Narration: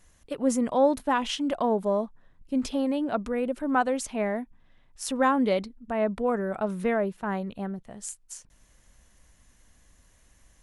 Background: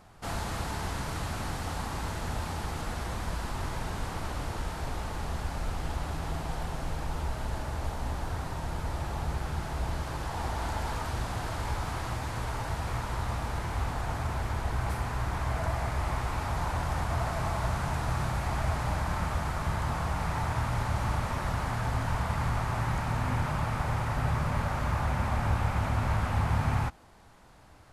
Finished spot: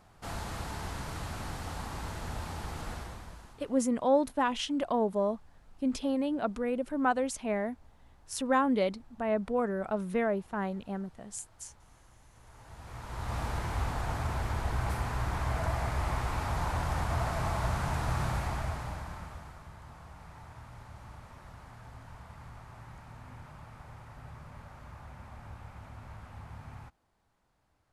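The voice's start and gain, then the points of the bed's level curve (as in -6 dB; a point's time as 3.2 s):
3.30 s, -3.5 dB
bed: 2.93 s -4.5 dB
3.88 s -28 dB
12.28 s -28 dB
13.39 s -1 dB
18.35 s -1 dB
19.7 s -19 dB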